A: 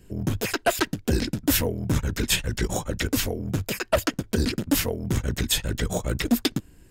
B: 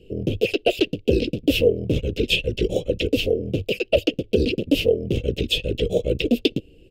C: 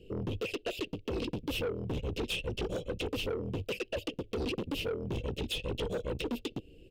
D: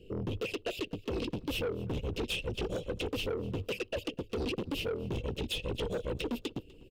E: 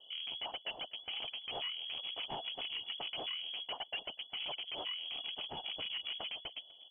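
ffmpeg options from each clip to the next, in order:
-af "firequalizer=gain_entry='entry(220,0);entry(480,14);entry(950,-24);entry(1800,-19);entry(2700,11);entry(3800,0);entry(6800,-14)':delay=0.05:min_phase=1"
-af "alimiter=limit=-14dB:level=0:latency=1:release=255,asoftclip=type=tanh:threshold=-25dB,volume=-4.5dB"
-af "aecho=1:1:248|496:0.0708|0.0219"
-filter_complex "[0:a]acrossover=split=610[a][b];[a]asoftclip=type=hard:threshold=-38dB[c];[c][b]amix=inputs=2:normalize=0,lowpass=f=2.9k:t=q:w=0.5098,lowpass=f=2.9k:t=q:w=0.6013,lowpass=f=2.9k:t=q:w=0.9,lowpass=f=2.9k:t=q:w=2.563,afreqshift=-3400,volume=-3.5dB"

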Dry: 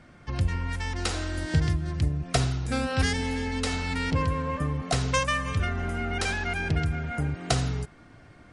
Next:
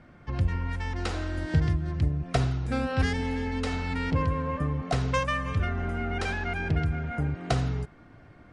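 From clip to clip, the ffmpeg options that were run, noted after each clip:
-af "lowpass=f=2k:p=1"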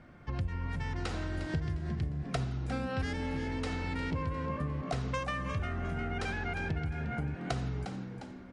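-filter_complex "[0:a]asplit=5[a][b][c][d][e];[b]adelay=354,afreqshift=62,volume=-12dB[f];[c]adelay=708,afreqshift=124,volume=-19.7dB[g];[d]adelay=1062,afreqshift=186,volume=-27.5dB[h];[e]adelay=1416,afreqshift=248,volume=-35.2dB[i];[a][f][g][h][i]amix=inputs=5:normalize=0,acompressor=threshold=-30dB:ratio=3,volume=-2dB"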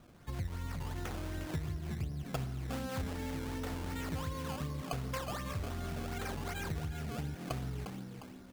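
-af "acrusher=samples=16:mix=1:aa=0.000001:lfo=1:lforange=16:lforate=2.7,volume=-4dB"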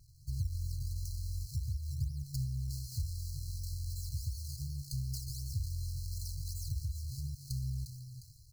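-af "afftfilt=real='re*(1-between(b*sr/4096,150,4000))':imag='im*(1-between(b*sr/4096,150,4000))':win_size=4096:overlap=0.75,volume=3.5dB"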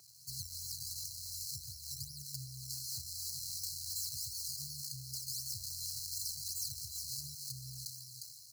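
-filter_complex "[0:a]highpass=500,acrossover=split=720|1500[a][b][c];[c]alimiter=level_in=10dB:limit=-24dB:level=0:latency=1:release=364,volume=-10dB[d];[a][b][d]amix=inputs=3:normalize=0,volume=12dB"

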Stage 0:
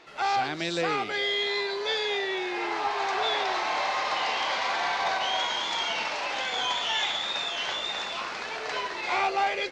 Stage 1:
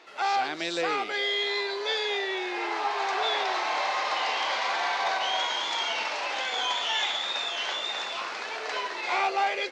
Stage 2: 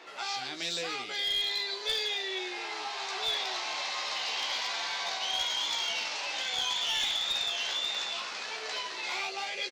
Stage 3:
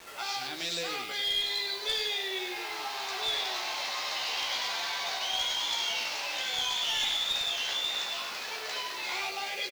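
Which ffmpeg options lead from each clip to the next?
-af "highpass=300"
-filter_complex "[0:a]acrossover=split=170|3000[a][b][c];[b]acompressor=threshold=-48dB:ratio=2.5[d];[a][d][c]amix=inputs=3:normalize=0,asplit=2[e][f];[f]adelay=16,volume=-5.5dB[g];[e][g]amix=inputs=2:normalize=0,aeval=exprs='clip(val(0),-1,0.0398)':c=same,volume=2dB"
-af "acrusher=bits=7:mix=0:aa=0.000001,aecho=1:1:99:0.376"

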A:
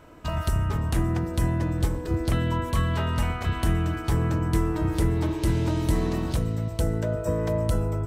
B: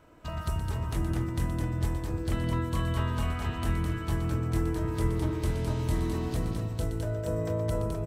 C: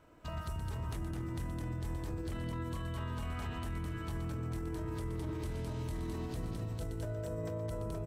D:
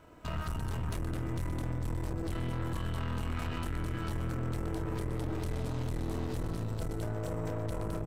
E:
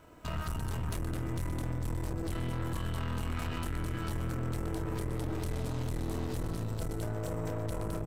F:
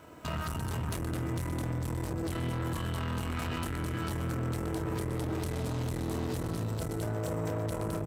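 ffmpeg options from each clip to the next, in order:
-filter_complex "[0:a]acrossover=split=3400[a][b];[b]volume=27dB,asoftclip=hard,volume=-27dB[c];[a][c]amix=inputs=2:normalize=0,aecho=1:1:121|210|474:0.335|0.596|0.501,volume=-7.5dB"
-af "alimiter=level_in=2.5dB:limit=-24dB:level=0:latency=1:release=35,volume=-2.5dB,volume=-4.5dB"
-filter_complex "[0:a]asplit=2[a][b];[b]adelay=25,volume=-10.5dB[c];[a][c]amix=inputs=2:normalize=0,aeval=exprs='(tanh(100*val(0)+0.65)-tanh(0.65))/100':c=same,volume=8.5dB"
-af "highshelf=f=6.3k:g=5.5"
-filter_complex "[0:a]highpass=79,asplit=2[a][b];[b]alimiter=level_in=10dB:limit=-24dB:level=0:latency=1,volume=-10dB,volume=-2dB[c];[a][c]amix=inputs=2:normalize=0"

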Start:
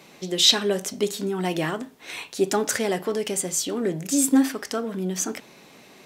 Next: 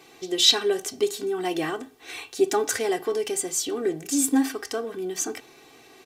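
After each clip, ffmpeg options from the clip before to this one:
-af "aecho=1:1:2.6:0.79,volume=-3.5dB"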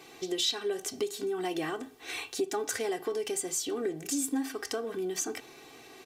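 -af "acompressor=threshold=-31dB:ratio=3"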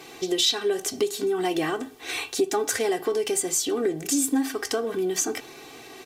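-af "volume=7.5dB" -ar 48000 -c:a libvorbis -b:a 64k

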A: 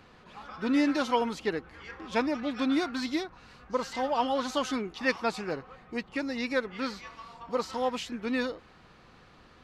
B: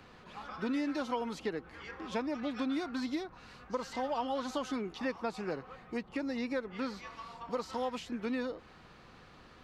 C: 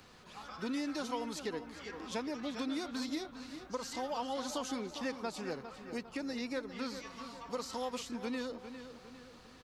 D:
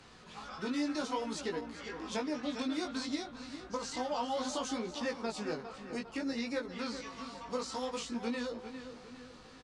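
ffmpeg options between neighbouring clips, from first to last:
-filter_complex "[0:a]acrossover=split=120|1200[a][b][c];[a]acompressor=threshold=-59dB:ratio=4[d];[b]acompressor=threshold=-33dB:ratio=4[e];[c]acompressor=threshold=-46dB:ratio=4[f];[d][e][f]amix=inputs=3:normalize=0"
-filter_complex "[0:a]bass=f=250:g=0,treble=f=4k:g=12,asplit=2[a][b];[b]adelay=403,lowpass=f=4.5k:p=1,volume=-10dB,asplit=2[c][d];[d]adelay=403,lowpass=f=4.5k:p=1,volume=0.46,asplit=2[e][f];[f]adelay=403,lowpass=f=4.5k:p=1,volume=0.46,asplit=2[g][h];[h]adelay=403,lowpass=f=4.5k:p=1,volume=0.46,asplit=2[i][j];[j]adelay=403,lowpass=f=4.5k:p=1,volume=0.46[k];[a][c][e][g][i][k]amix=inputs=6:normalize=0,volume=-3.5dB"
-af "flanger=delay=17:depth=3.2:speed=0.6,aresample=22050,aresample=44100,volume=5dB"

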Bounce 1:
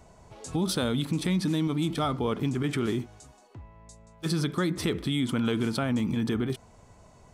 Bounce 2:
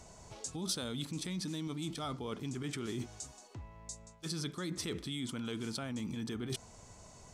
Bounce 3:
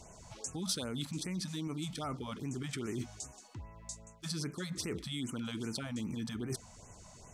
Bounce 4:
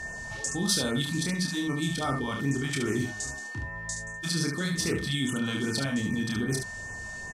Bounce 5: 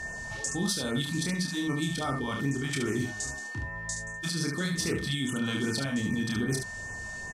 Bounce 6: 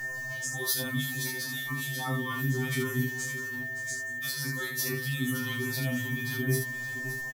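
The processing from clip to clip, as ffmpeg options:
-af "areverse,acompressor=threshold=-34dB:ratio=12,areverse,equalizer=f=6.4k:t=o:w=1.6:g=11,volume=-2dB"
-af "afftfilt=real='re*(1-between(b*sr/1024,330*pow(4300/330,0.5+0.5*sin(2*PI*2.5*pts/sr))/1.41,330*pow(4300/330,0.5+0.5*sin(2*PI*2.5*pts/sr))*1.41))':imag='im*(1-between(b*sr/1024,330*pow(4300/330,0.5+0.5*sin(2*PI*2.5*pts/sr))/1.41,330*pow(4300/330,0.5+0.5*sin(2*PI*2.5*pts/sr))*1.41))':win_size=1024:overlap=0.75,volume=1dB"
-filter_complex "[0:a]aeval=exprs='val(0)+0.00631*sin(2*PI*1800*n/s)':c=same,asplit=2[a][b];[b]aecho=0:1:29|72:0.631|0.531[c];[a][c]amix=inputs=2:normalize=0,volume=7.5dB"
-af "alimiter=limit=-19dB:level=0:latency=1:release=282"
-af "aexciter=amount=13.8:drive=7.3:freq=12k,aecho=1:1:569|1138|1707:0.251|0.0854|0.029,afftfilt=real='re*2.45*eq(mod(b,6),0)':imag='im*2.45*eq(mod(b,6),0)':win_size=2048:overlap=0.75"

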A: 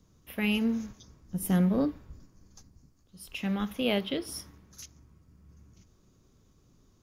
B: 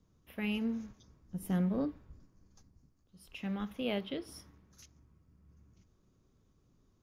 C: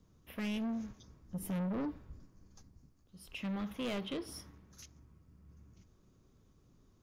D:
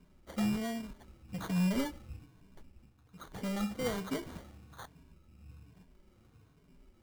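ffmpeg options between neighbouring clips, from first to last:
-af "highshelf=f=4.4k:g=-8,volume=-6.5dB"
-af "asoftclip=type=tanh:threshold=-37dB,volume=3.5dB"
-af "afftfilt=real='re*pow(10,20/40*sin(2*PI*(1.6*log(max(b,1)*sr/1024/100)/log(2)-(-1.2)*(pts-256)/sr)))':imag='im*pow(10,20/40*sin(2*PI*(1.6*log(max(b,1)*sr/1024/100)/log(2)-(-1.2)*(pts-256)/sr)))':win_size=1024:overlap=0.75,acrusher=samples=17:mix=1:aa=0.000001"

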